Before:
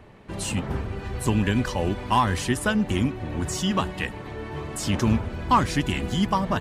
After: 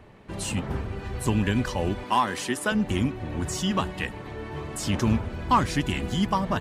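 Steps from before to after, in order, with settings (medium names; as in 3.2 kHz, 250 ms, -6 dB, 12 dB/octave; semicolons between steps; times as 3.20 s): 2.04–2.72 s: high-pass 240 Hz 12 dB/octave; trim -1.5 dB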